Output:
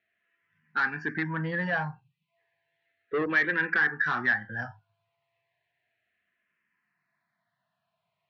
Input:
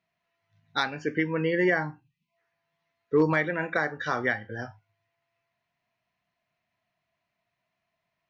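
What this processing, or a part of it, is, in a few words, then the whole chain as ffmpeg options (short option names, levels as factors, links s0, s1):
barber-pole phaser into a guitar amplifier: -filter_complex "[0:a]asplit=2[s0][s1];[s1]afreqshift=-0.33[s2];[s0][s2]amix=inputs=2:normalize=1,asoftclip=type=tanh:threshold=0.0501,highpass=98,equalizer=f=280:t=q:w=4:g=-5,equalizer=f=580:t=q:w=4:g=-4,equalizer=f=1700:t=q:w=4:g=9,lowpass=f=4200:w=0.5412,lowpass=f=4200:w=1.3066,volume=1.41"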